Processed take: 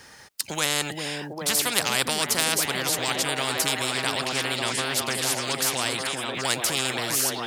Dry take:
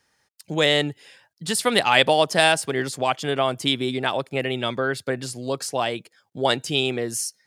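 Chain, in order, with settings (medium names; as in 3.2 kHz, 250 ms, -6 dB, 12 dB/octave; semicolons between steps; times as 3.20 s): repeats whose band climbs or falls 400 ms, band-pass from 240 Hz, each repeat 0.7 oct, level 0 dB; spectrum-flattening compressor 4:1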